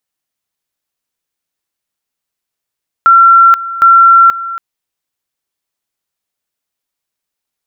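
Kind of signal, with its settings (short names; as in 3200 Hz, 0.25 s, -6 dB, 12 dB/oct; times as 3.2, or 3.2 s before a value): two-level tone 1360 Hz -1.5 dBFS, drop 16 dB, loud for 0.48 s, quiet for 0.28 s, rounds 2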